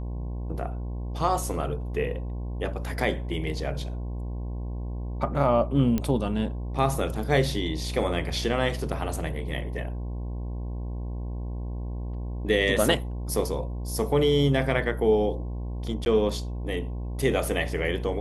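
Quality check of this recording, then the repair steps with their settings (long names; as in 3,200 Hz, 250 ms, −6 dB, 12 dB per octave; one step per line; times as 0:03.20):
mains buzz 60 Hz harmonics 18 −32 dBFS
0:05.98: click −14 dBFS
0:16.05–0:16.06: drop-out 11 ms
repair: click removal
hum removal 60 Hz, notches 18
repair the gap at 0:16.05, 11 ms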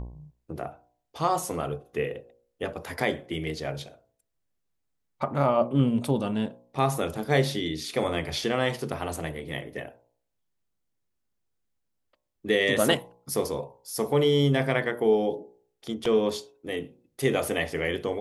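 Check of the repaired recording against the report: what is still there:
none of them is left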